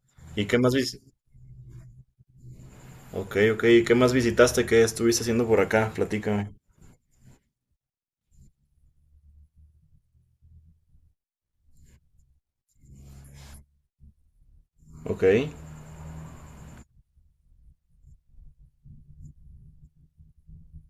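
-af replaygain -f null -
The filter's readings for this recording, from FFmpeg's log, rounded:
track_gain = +6.0 dB
track_peak = 0.492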